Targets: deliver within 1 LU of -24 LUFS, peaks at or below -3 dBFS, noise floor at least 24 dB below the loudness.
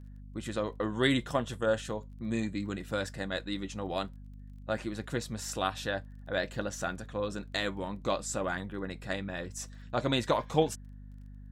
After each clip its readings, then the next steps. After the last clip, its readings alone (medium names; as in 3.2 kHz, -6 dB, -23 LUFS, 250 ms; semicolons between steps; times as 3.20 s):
tick rate 18 per s; hum 50 Hz; highest harmonic 250 Hz; hum level -45 dBFS; loudness -33.5 LUFS; peak level -11.5 dBFS; loudness target -24.0 LUFS
-> de-click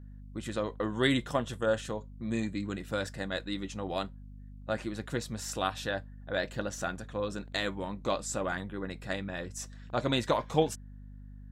tick rate 0 per s; hum 50 Hz; highest harmonic 250 Hz; hum level -45 dBFS
-> hum notches 50/100/150/200/250 Hz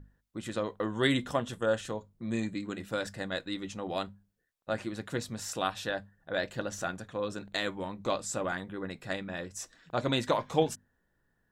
hum not found; loudness -34.0 LUFS; peak level -11.5 dBFS; loudness target -24.0 LUFS
-> trim +10 dB; peak limiter -3 dBFS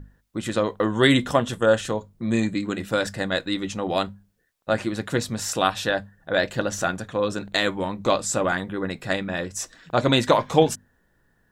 loudness -24.0 LUFS; peak level -3.0 dBFS; noise floor -66 dBFS